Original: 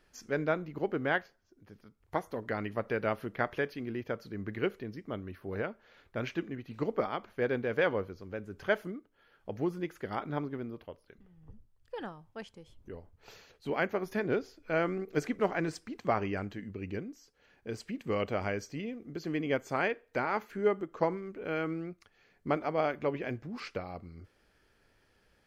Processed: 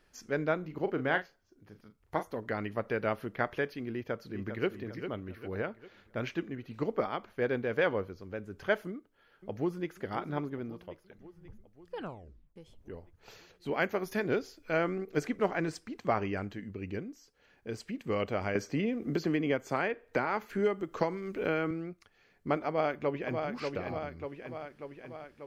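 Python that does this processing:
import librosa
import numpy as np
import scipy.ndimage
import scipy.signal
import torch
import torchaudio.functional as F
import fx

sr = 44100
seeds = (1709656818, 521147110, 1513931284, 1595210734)

y = fx.doubler(x, sr, ms=38.0, db=-10.0, at=(0.6, 2.23))
y = fx.echo_throw(y, sr, start_s=3.89, length_s=0.79, ms=400, feedback_pct=45, wet_db=-8.5)
y = fx.echo_throw(y, sr, start_s=8.88, length_s=1.07, ms=540, feedback_pct=65, wet_db=-13.5)
y = fx.high_shelf(y, sr, hz=3300.0, db=7.0, at=(13.8, 14.77))
y = fx.band_squash(y, sr, depth_pct=100, at=(18.55, 21.71))
y = fx.echo_throw(y, sr, start_s=22.68, length_s=0.79, ms=590, feedback_pct=65, wet_db=-5.0)
y = fx.edit(y, sr, fx.tape_stop(start_s=11.97, length_s=0.59), tone=tone)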